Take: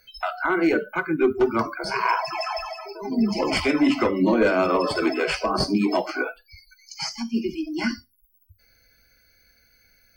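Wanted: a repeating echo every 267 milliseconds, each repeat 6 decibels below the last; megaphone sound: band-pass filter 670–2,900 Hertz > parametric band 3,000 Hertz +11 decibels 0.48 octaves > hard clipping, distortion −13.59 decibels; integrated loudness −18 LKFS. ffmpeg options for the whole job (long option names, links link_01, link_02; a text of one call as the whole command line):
ffmpeg -i in.wav -af "highpass=670,lowpass=2900,equalizer=frequency=3000:width_type=o:width=0.48:gain=11,aecho=1:1:267|534|801|1068|1335|1602:0.501|0.251|0.125|0.0626|0.0313|0.0157,asoftclip=type=hard:threshold=-20.5dB,volume=9.5dB" out.wav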